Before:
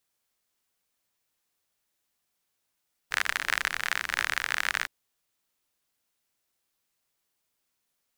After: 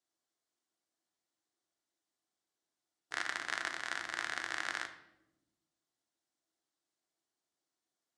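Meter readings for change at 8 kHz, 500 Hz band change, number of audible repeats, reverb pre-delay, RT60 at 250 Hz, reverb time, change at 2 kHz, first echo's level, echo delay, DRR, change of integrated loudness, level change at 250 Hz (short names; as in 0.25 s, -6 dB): -9.5 dB, -4.0 dB, none, 3 ms, 1.7 s, 0.95 s, -9.5 dB, none, none, 5.5 dB, -9.5 dB, -1.5 dB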